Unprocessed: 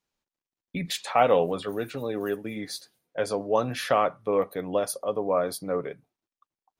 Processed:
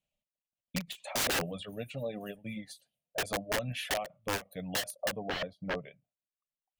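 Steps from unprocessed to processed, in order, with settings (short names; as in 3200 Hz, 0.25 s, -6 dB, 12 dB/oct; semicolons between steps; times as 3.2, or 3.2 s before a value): reverb removal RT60 1 s; EQ curve 200 Hz 0 dB, 380 Hz -18 dB, 610 Hz +5 dB, 940 Hz -13 dB, 1500 Hz -15 dB, 2800 Hz +2 dB, 5100 Hz -14 dB, 7900 Hz -5 dB, 15000 Hz -9 dB; 3.39–4.23 compressor 20:1, threshold -26 dBFS, peak gain reduction 10 dB; wrapped overs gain 25 dB; 5.22–5.79 air absorption 270 m; ending taper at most 290 dB/s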